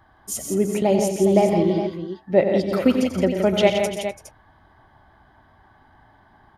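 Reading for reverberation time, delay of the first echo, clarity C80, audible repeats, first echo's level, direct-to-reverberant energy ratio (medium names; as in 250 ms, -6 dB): no reverb, 91 ms, no reverb, 6, -9.5 dB, no reverb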